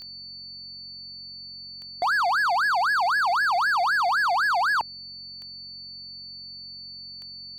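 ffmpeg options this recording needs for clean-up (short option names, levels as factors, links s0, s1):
-af "adeclick=t=4,bandreject=f=45.5:t=h:w=4,bandreject=f=91:t=h:w=4,bandreject=f=136.5:t=h:w=4,bandreject=f=182:t=h:w=4,bandreject=f=227.5:t=h:w=4,bandreject=f=4500:w=30"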